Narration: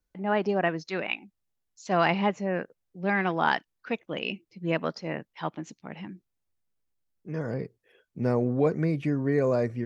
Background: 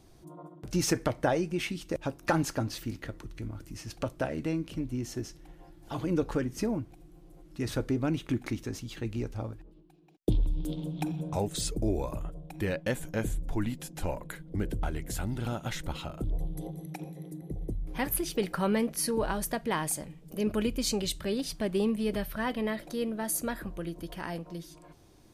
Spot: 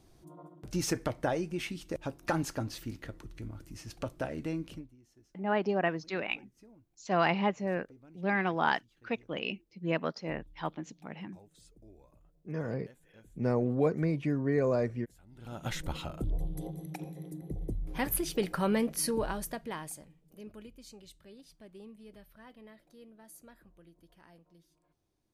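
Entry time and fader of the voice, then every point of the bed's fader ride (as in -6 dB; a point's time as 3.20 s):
5.20 s, -3.5 dB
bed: 4.73 s -4 dB
4.96 s -27.5 dB
15.24 s -27.5 dB
15.65 s -1 dB
19.09 s -1 dB
20.78 s -22 dB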